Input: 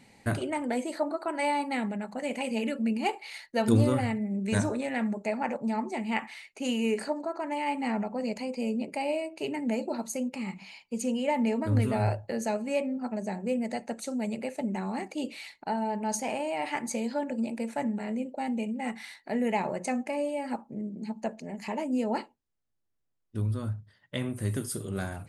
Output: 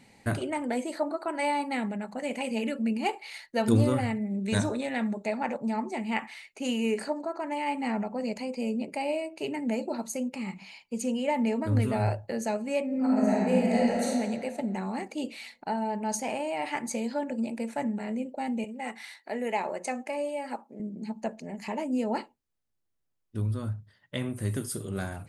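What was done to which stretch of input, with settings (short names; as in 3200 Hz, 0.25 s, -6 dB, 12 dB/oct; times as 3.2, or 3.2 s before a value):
4.27–5.58 bell 3700 Hz +9.5 dB 0.25 oct
12.86–14.05 reverb throw, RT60 2 s, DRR -6.5 dB
18.64–20.8 HPF 340 Hz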